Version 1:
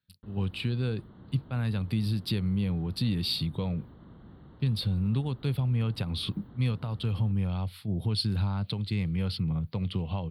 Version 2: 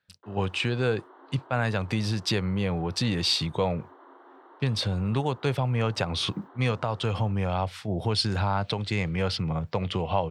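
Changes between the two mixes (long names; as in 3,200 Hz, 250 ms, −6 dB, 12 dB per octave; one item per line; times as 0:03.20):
background: add Chebyshev high-pass with heavy ripple 260 Hz, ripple 9 dB
master: remove drawn EQ curve 210 Hz 0 dB, 660 Hz −16 dB, 1,200 Hz −12 dB, 1,700 Hz −14 dB, 4,400 Hz −3 dB, 6,300 Hz −25 dB, 11,000 Hz +5 dB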